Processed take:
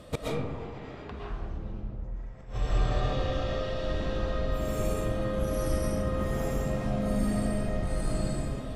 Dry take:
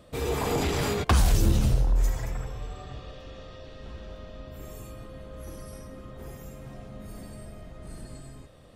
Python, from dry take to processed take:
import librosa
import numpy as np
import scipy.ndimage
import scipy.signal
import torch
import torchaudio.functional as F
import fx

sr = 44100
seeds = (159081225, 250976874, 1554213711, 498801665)

y = fx.env_lowpass_down(x, sr, base_hz=2200.0, full_db=-21.5)
y = fx.gate_flip(y, sr, shuts_db=-23.0, range_db=-27)
y = fx.rev_freeverb(y, sr, rt60_s=1.5, hf_ratio=0.35, predelay_ms=85, drr_db=-6.0)
y = F.gain(torch.from_numpy(y), 5.0).numpy()